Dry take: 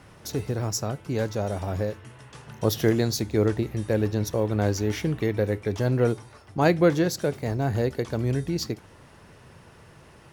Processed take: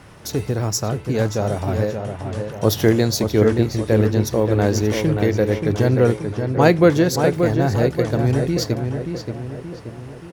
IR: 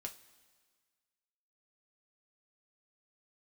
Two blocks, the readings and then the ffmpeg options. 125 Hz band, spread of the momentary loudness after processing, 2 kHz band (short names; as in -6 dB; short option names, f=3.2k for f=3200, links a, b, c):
+7.5 dB, 11 LU, +7.0 dB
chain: -filter_complex "[0:a]asplit=2[a][b];[b]adelay=579,lowpass=f=2.7k:p=1,volume=-6dB,asplit=2[c][d];[d]adelay=579,lowpass=f=2.7k:p=1,volume=0.51,asplit=2[e][f];[f]adelay=579,lowpass=f=2.7k:p=1,volume=0.51,asplit=2[g][h];[h]adelay=579,lowpass=f=2.7k:p=1,volume=0.51,asplit=2[i][j];[j]adelay=579,lowpass=f=2.7k:p=1,volume=0.51,asplit=2[k][l];[l]adelay=579,lowpass=f=2.7k:p=1,volume=0.51[m];[a][c][e][g][i][k][m]amix=inputs=7:normalize=0,volume=6dB"